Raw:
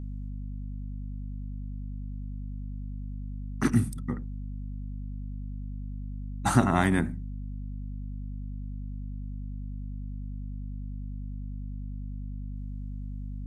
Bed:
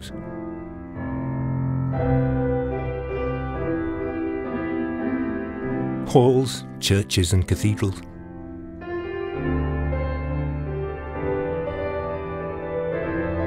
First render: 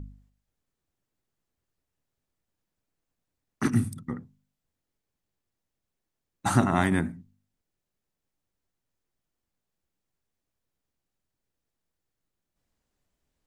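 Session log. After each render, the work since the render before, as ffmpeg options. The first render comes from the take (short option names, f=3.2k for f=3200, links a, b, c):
-af "bandreject=f=50:t=h:w=4,bandreject=f=100:t=h:w=4,bandreject=f=150:t=h:w=4,bandreject=f=200:t=h:w=4,bandreject=f=250:t=h:w=4"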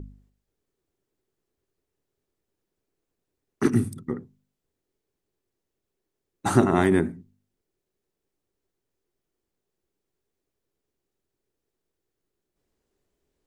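-af "equalizer=f=390:t=o:w=0.64:g=13"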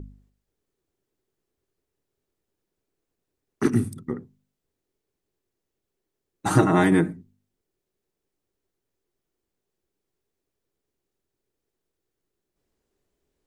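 -filter_complex "[0:a]asettb=1/sr,asplit=3[a][b][c];[a]atrim=end=6.504[d];[b]atrim=start=6.5:end=7.13,asetpts=PTS-STARTPTS,afade=t=in:d=0.004:c=qsin,afade=t=out:st=0.626:d=0.004:c=qsin,aecho=1:1:6.4:0.91,atrim=end_sample=27783[e];[c]atrim=start=7.126[f];[d][e]acrossfade=d=0.004:c1=hsin:c2=qsin[g];[g][f]acrossfade=d=0.004:c1=qsin:c2=hsin"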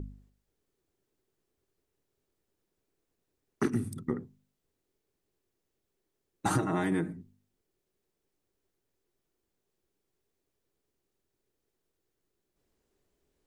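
-af "acompressor=threshold=-25dB:ratio=10"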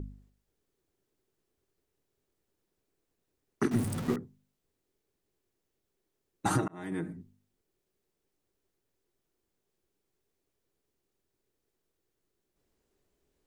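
-filter_complex "[0:a]asettb=1/sr,asplit=3[a][b][c];[a]atrim=end=3.714[d];[b]atrim=start=3.71:end=4.16,asetpts=PTS-STARTPTS,afade=t=in:d=0.004:c=qsin,afade=t=out:st=0.446:d=0.004:c=qsin,aeval=exprs='val(0)+0.5*0.0237*sgn(val(0))':c=same[e];[c]atrim=start=4.156[f];[d][e]acrossfade=d=0.004:c1=hsin:c2=qsin[g];[g][f]acrossfade=d=0.004:c1=qsin:c2=hsin,asplit=2[h][i];[h]atrim=end=6.68,asetpts=PTS-STARTPTS,afade=t=out:st=6.676:d=0.004:c=hsin[j];[i]atrim=start=6.68,asetpts=PTS-STARTPTS,afade=t=in:d=0.52[k];[j][k]concat=n=2:v=0:a=1"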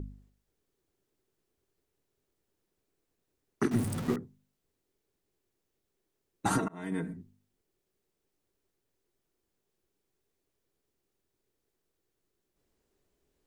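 -filter_complex "[0:a]asettb=1/sr,asplit=3[a][b][c];[a]atrim=end=6.514[d];[b]atrim=start=6.51:end=7.14,asetpts=PTS-STARTPTS,afade=t=in:d=0.004:c=qsin,afade=t=out:st=0.626:d=0.004:c=qsin,aecho=1:1:4.4:0.59,atrim=end_sample=27783[e];[c]atrim=start=7.136[f];[d][e]acrossfade=d=0.004:c1=hsin:c2=qsin[g];[g][f]acrossfade=d=0.004:c1=qsin:c2=hsin"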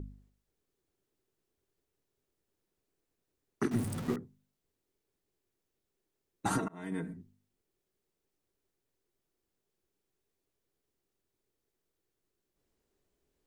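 -af "volume=-3dB"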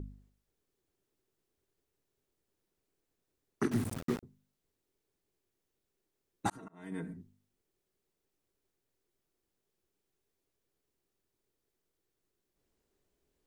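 -filter_complex "[0:a]asettb=1/sr,asplit=3[a][b][c];[a]atrim=end=3.714[d];[b]atrim=start=3.71:end=4.23,asetpts=PTS-STARTPTS,afade=t=in:d=0.004:c=qsin,afade=t=out:st=0.516:d=0.004:c=qsin,aeval=exprs='val(0)*gte(abs(val(0)),0.0158)':c=same[e];[c]atrim=start=4.226[f];[d][e]acrossfade=d=0.004:c1=hsin:c2=qsin[g];[g][f]acrossfade=d=0.004:c1=qsin:c2=hsin,asplit=2[h][i];[h]atrim=end=6.5,asetpts=PTS-STARTPTS,afade=t=out:st=6.496:d=0.004:c=hsin[j];[i]atrim=start=6.5,asetpts=PTS-STARTPTS,afade=t=in:d=0.68[k];[j][k]concat=n=2:v=0:a=1"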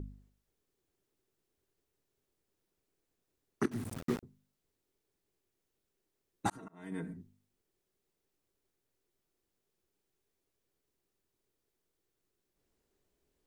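-filter_complex "[0:a]asplit=2[a][b];[a]atrim=end=3.66,asetpts=PTS-STARTPTS,afade=t=out:st=3.656:d=0.004:c=hsin:silence=0.251189[c];[b]atrim=start=3.66,asetpts=PTS-STARTPTS,afade=t=in:d=0.45:silence=0.251189[d];[c][d]concat=n=2:v=0:a=1"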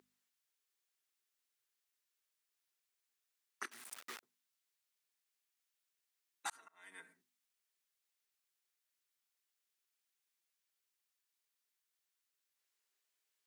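-af "highpass=1.5k"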